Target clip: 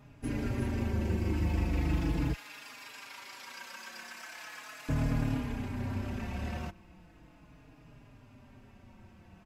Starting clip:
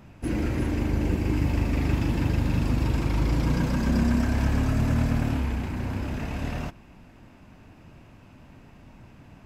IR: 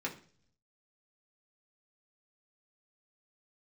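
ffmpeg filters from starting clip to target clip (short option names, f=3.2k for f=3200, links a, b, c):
-filter_complex "[0:a]asettb=1/sr,asplit=3[a][b][c];[a]atrim=end=2.334[d];[b]atrim=start=2.33:end=4.89,asetpts=PTS-STARTPTS,afade=t=in:d=0.004:c=qsin,afade=t=out:st=2.556:d=0.004:c=qsin,highpass=1.4k[e];[c]atrim=start=4.886[f];[d][e]acrossfade=d=0.004:c1=hsin:c2=qsin[g];[g][f]acrossfade=d=0.004:c1=qsin:c2=hsin,asplit=2[h][i];[i]adelay=4.4,afreqshift=-0.38[j];[h][j]amix=inputs=2:normalize=1,volume=-3dB"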